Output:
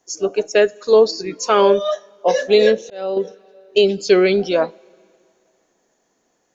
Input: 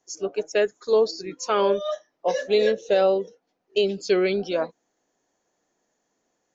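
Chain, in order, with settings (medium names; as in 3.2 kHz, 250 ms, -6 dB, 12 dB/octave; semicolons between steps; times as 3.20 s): two-slope reverb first 0.26 s, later 2.5 s, from -18 dB, DRR 19.5 dB; 2.60–3.17 s: slow attack 601 ms; trim +7.5 dB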